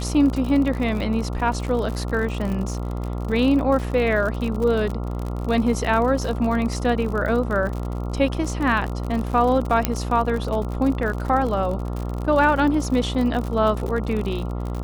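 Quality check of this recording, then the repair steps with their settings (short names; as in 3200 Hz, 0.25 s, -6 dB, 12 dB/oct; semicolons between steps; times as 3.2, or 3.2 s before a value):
buzz 60 Hz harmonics 23 -27 dBFS
crackle 57/s -27 dBFS
9.85 pop -3 dBFS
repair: de-click; de-hum 60 Hz, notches 23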